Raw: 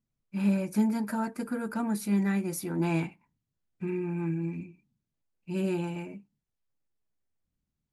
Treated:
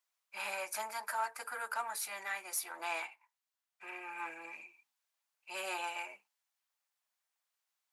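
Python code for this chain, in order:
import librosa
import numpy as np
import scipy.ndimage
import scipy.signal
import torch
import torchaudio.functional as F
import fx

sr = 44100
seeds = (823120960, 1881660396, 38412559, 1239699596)

y = fx.diode_clip(x, sr, knee_db=-22.5)
y = scipy.signal.sosfilt(scipy.signal.butter(4, 770.0, 'highpass', fs=sr, output='sos'), y)
y = fx.rider(y, sr, range_db=3, speed_s=0.5)
y = y * librosa.db_to_amplitude(4.5)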